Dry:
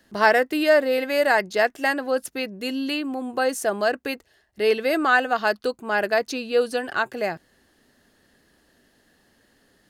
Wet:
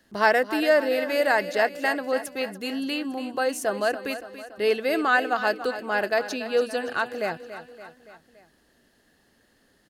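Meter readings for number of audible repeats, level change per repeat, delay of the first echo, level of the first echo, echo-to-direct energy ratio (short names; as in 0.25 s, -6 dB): 4, -5.0 dB, 0.284 s, -12.5 dB, -11.0 dB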